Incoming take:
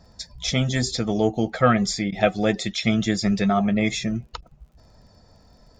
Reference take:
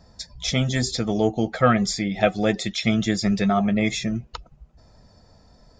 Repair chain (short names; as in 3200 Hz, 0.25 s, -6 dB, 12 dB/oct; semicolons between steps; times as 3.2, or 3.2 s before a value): de-click; interpolate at 2.11/4.41, 12 ms